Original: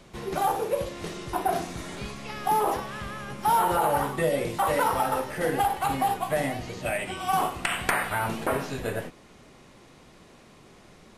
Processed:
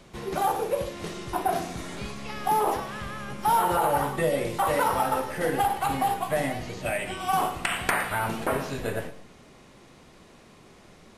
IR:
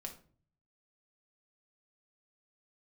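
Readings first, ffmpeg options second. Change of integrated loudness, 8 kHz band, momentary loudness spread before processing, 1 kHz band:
0.0 dB, 0.0 dB, 12 LU, 0.0 dB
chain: -filter_complex "[0:a]asplit=2[s0][s1];[1:a]atrim=start_sample=2205,adelay=114[s2];[s1][s2]afir=irnorm=-1:irlink=0,volume=0.266[s3];[s0][s3]amix=inputs=2:normalize=0"

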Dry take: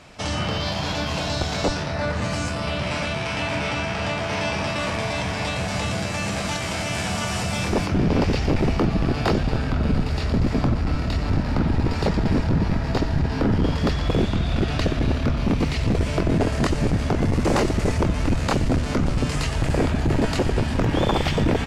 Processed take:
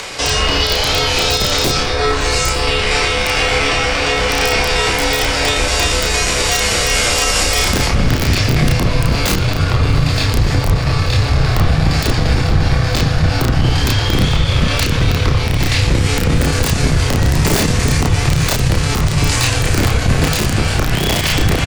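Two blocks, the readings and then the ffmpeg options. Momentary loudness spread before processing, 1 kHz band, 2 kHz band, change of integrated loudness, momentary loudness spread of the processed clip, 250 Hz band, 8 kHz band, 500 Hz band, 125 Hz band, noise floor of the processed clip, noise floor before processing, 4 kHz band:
4 LU, +7.5 dB, +11.5 dB, +8.5 dB, 2 LU, +2.5 dB, +16.5 dB, +6.0 dB, +8.0 dB, -17 dBFS, -27 dBFS, +14.0 dB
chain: -filter_complex "[0:a]highshelf=f=2400:g=9.5,acrossover=split=400[s0][s1];[s1]acompressor=mode=upward:threshold=0.0447:ratio=2.5[s2];[s0][s2]amix=inputs=2:normalize=0,aeval=exprs='(mod(3.35*val(0)+1,2)-1)/3.35':c=same,asplit=2[s3][s4];[s4]adelay=32,volume=0.631[s5];[s3][s5]amix=inputs=2:normalize=0,asplit=2[s6][s7];[s7]aecho=0:1:903|1806|2709:0.075|0.0315|0.0132[s8];[s6][s8]amix=inputs=2:normalize=0,afreqshift=-160,alimiter=level_in=2.99:limit=0.891:release=50:level=0:latency=1,volume=0.75"

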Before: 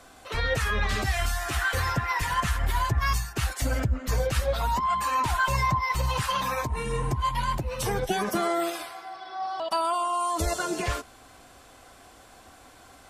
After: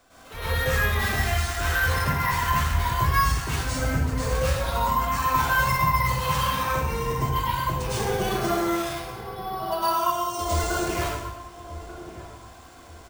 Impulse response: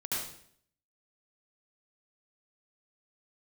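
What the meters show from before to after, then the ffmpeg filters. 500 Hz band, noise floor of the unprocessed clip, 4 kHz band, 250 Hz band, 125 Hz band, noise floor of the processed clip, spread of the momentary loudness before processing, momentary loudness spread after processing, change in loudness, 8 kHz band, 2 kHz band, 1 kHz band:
+2.0 dB, -52 dBFS, +2.0 dB, +3.5 dB, +3.5 dB, -46 dBFS, 6 LU, 14 LU, +2.5 dB, +2.0 dB, +3.5 dB, +2.5 dB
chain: -filter_complex "[1:a]atrim=start_sample=2205,asetrate=29547,aresample=44100[s0];[0:a][s0]afir=irnorm=-1:irlink=0,acrusher=samples=3:mix=1:aa=0.000001,asplit=2[s1][s2];[s2]adelay=1187,lowpass=f=820:p=1,volume=0.266,asplit=2[s3][s4];[s4]adelay=1187,lowpass=f=820:p=1,volume=0.38,asplit=2[s5][s6];[s6]adelay=1187,lowpass=f=820:p=1,volume=0.38,asplit=2[s7][s8];[s8]adelay=1187,lowpass=f=820:p=1,volume=0.38[s9];[s1][s3][s5][s7][s9]amix=inputs=5:normalize=0,volume=0.531"

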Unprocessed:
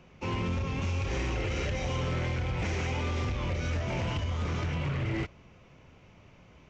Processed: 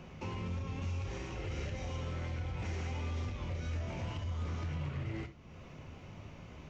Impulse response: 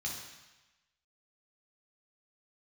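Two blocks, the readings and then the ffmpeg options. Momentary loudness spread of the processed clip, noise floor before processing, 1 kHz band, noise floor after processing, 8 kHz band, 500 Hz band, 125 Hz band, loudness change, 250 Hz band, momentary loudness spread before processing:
12 LU, -56 dBFS, -9.0 dB, -52 dBFS, no reading, -9.5 dB, -6.5 dB, -7.5 dB, -8.0 dB, 1 LU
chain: -filter_complex "[0:a]acompressor=threshold=0.00251:ratio=2.5,asplit=2[s0][s1];[1:a]atrim=start_sample=2205,afade=t=out:st=0.16:d=0.01,atrim=end_sample=7497[s2];[s1][s2]afir=irnorm=-1:irlink=0,volume=0.355[s3];[s0][s3]amix=inputs=2:normalize=0,volume=2"

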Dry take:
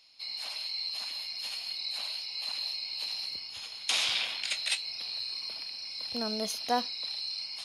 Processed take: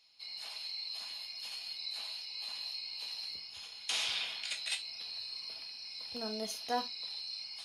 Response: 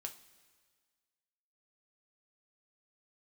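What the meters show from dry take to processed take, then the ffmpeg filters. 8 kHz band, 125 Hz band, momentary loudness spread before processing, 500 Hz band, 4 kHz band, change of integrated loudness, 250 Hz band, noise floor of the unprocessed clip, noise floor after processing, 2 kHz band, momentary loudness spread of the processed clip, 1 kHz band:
-5.5 dB, no reading, 7 LU, -4.5 dB, -6.0 dB, -6.0 dB, -6.5 dB, -43 dBFS, -49 dBFS, -6.0 dB, 7 LU, -5.5 dB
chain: -filter_complex "[1:a]atrim=start_sample=2205,atrim=end_sample=3969,asetrate=48510,aresample=44100[s0];[0:a][s0]afir=irnorm=-1:irlink=0,volume=0.841"

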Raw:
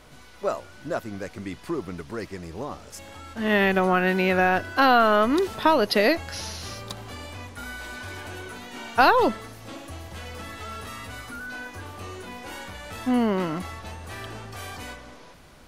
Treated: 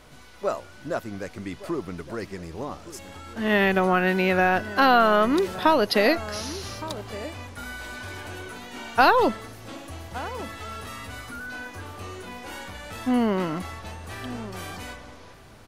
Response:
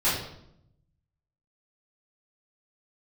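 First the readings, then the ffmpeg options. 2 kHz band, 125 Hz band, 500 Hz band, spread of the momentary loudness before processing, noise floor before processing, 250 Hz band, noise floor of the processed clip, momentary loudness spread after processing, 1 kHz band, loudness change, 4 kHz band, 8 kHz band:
0.0 dB, 0.0 dB, 0.0 dB, 19 LU, -47 dBFS, 0.0 dB, -47 dBFS, 19 LU, 0.0 dB, -0.5 dB, 0.0 dB, 0.0 dB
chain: -filter_complex "[0:a]asplit=2[s0][s1];[s1]adelay=1166,volume=0.178,highshelf=f=4000:g=-26.2[s2];[s0][s2]amix=inputs=2:normalize=0"

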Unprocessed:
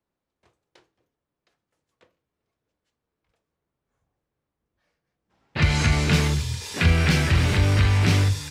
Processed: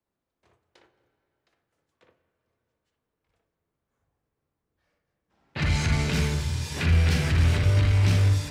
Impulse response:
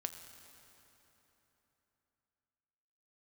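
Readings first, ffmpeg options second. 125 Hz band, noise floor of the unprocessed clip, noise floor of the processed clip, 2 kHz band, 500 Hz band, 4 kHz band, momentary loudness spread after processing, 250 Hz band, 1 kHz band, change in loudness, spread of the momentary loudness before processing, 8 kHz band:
-1.5 dB, -85 dBFS, -84 dBFS, -6.0 dB, -4.0 dB, -5.5 dB, 8 LU, -5.0 dB, -6.0 dB, -2.5 dB, 6 LU, -4.5 dB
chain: -filter_complex "[0:a]acrossover=split=150|3000[s0][s1][s2];[s1]acompressor=threshold=0.0251:ratio=1.5[s3];[s0][s3][s2]amix=inputs=3:normalize=0,asoftclip=type=tanh:threshold=0.158,asplit=2[s4][s5];[1:a]atrim=start_sample=2205,lowpass=2500,adelay=59[s6];[s5][s6]afir=irnorm=-1:irlink=0,volume=1.12[s7];[s4][s7]amix=inputs=2:normalize=0,volume=0.708"

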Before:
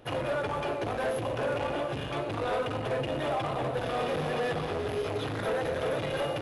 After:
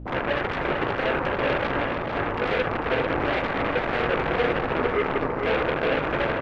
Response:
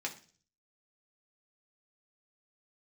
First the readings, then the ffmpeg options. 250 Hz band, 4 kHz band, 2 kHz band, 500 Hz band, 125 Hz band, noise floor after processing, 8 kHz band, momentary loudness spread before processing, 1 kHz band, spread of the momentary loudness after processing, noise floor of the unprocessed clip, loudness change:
+7.0 dB, +4.5 dB, +10.5 dB, +5.0 dB, +3.0 dB, -29 dBFS, no reading, 2 LU, +7.0 dB, 2 LU, -34 dBFS, +6.5 dB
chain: -filter_complex "[0:a]afwtdn=0.0282,equalizer=f=320:t=o:w=2.7:g=14,asplit=2[s0][s1];[s1]alimiter=level_in=2.11:limit=0.0631:level=0:latency=1,volume=0.473,volume=1.19[s2];[s0][s2]amix=inputs=2:normalize=0,aeval=exprs='val(0)+0.0224*(sin(2*PI*60*n/s)+sin(2*PI*2*60*n/s)/2+sin(2*PI*3*60*n/s)/3+sin(2*PI*4*60*n/s)/4+sin(2*PI*5*60*n/s)/5)':c=same,adynamicsmooth=sensitivity=6:basefreq=3300,aeval=exprs='0.335*(cos(1*acos(clip(val(0)/0.335,-1,1)))-cos(1*PI/2))+0.075*(cos(3*acos(clip(val(0)/0.335,-1,1)))-cos(3*PI/2))+0.0841*(cos(7*acos(clip(val(0)/0.335,-1,1)))-cos(7*PI/2))':c=same,aecho=1:1:446:0.473,asplit=2[s3][s4];[1:a]atrim=start_sample=2205,asetrate=48510,aresample=44100[s5];[s4][s5]afir=irnorm=-1:irlink=0,volume=0.282[s6];[s3][s6]amix=inputs=2:normalize=0,volume=0.501"

